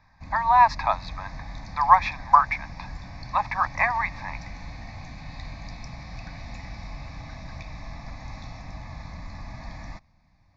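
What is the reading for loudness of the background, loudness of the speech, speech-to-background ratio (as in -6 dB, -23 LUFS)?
-40.5 LUFS, -22.0 LUFS, 18.5 dB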